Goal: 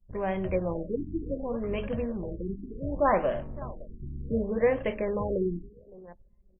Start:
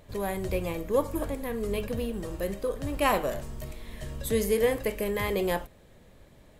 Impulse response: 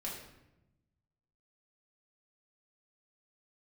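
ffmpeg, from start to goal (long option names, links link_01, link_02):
-af "bandreject=frequency=440:width=12,aecho=1:1:562|1124:0.112|0.0292,adynamicequalizer=threshold=0.0141:dfrequency=590:dqfactor=2.3:tfrequency=590:tqfactor=2.3:attack=5:release=100:ratio=0.375:range=2:mode=boostabove:tftype=bell,bandreject=frequency=50:width_type=h:width=6,bandreject=frequency=100:width_type=h:width=6,bandreject=frequency=150:width_type=h:width=6,bandreject=frequency=200:width_type=h:width=6,bandreject=frequency=250:width_type=h:width=6,bandreject=frequency=300:width_type=h:width=6,anlmdn=0.158,equalizer=frequency=190:width_type=o:width=0.36:gain=4,afftfilt=real='re*lt(b*sr/1024,380*pow(3400/380,0.5+0.5*sin(2*PI*0.67*pts/sr)))':imag='im*lt(b*sr/1024,380*pow(3400/380,0.5+0.5*sin(2*PI*0.67*pts/sr)))':win_size=1024:overlap=0.75"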